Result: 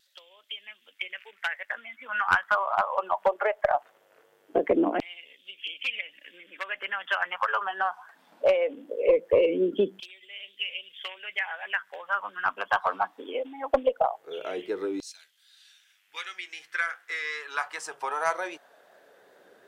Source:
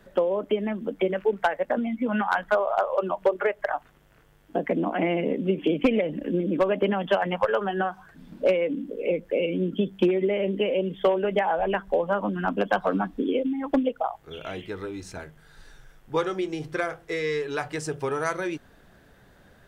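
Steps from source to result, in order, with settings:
auto-filter high-pass saw down 0.2 Hz 320–4,300 Hz
harmonic generator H 4 −18 dB, 6 −24 dB, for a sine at −4.5 dBFS
pitch vibrato 2.6 Hz 30 cents
level −2 dB

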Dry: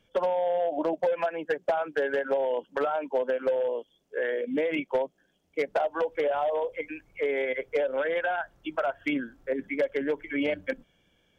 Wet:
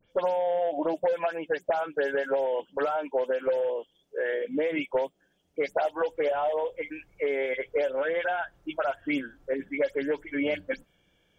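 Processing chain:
every frequency bin delayed by itself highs late, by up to 104 ms

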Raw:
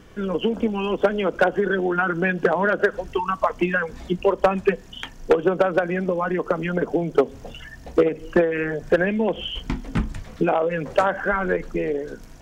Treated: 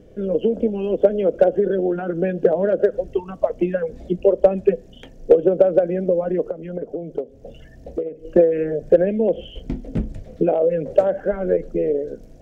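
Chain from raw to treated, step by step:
low shelf with overshoot 770 Hz +10.5 dB, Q 3
0:06.49–0:08.25: downward compressor 2.5 to 1, threshold −18 dBFS, peak gain reduction 14.5 dB
level −11 dB

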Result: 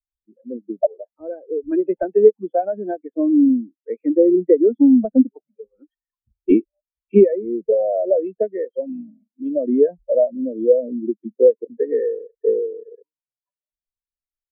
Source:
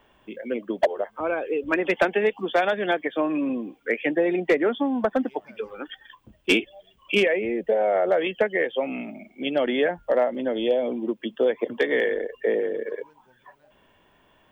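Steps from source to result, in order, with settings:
RIAA equalisation playback
every bin expanded away from the loudest bin 2.5 to 1
level +4.5 dB

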